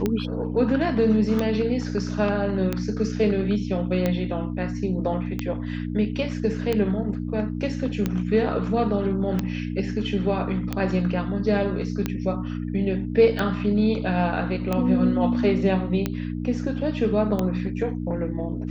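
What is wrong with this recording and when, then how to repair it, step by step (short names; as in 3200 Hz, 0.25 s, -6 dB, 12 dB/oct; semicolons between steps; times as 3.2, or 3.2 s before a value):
hum 60 Hz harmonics 5 -29 dBFS
tick 45 rpm -11 dBFS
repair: de-click; de-hum 60 Hz, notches 5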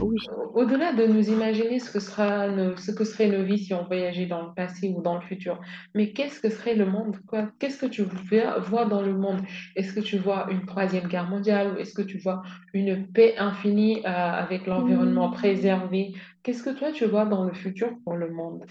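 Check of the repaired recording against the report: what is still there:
none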